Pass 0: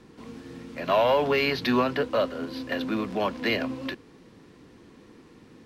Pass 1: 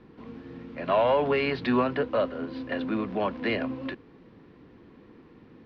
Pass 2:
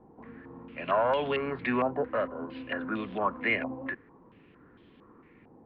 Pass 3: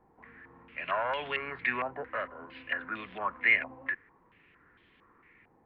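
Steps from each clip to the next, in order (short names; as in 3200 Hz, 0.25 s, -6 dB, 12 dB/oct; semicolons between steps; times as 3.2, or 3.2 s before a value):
air absorption 300 m
stepped low-pass 4.4 Hz 810–3300 Hz; gain -5.5 dB
graphic EQ 125/250/500/2000 Hz -4/-8/-4/+10 dB; gain -4.5 dB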